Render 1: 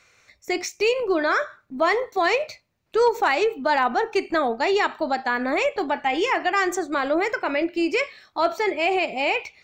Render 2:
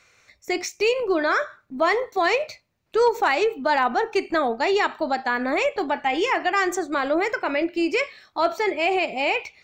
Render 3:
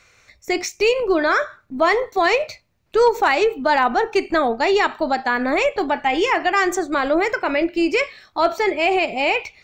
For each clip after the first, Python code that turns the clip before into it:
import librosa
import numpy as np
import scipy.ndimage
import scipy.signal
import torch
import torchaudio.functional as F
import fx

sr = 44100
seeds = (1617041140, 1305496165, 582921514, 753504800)

y1 = x
y2 = fx.low_shelf(y1, sr, hz=73.0, db=10.5)
y2 = y2 * 10.0 ** (3.5 / 20.0)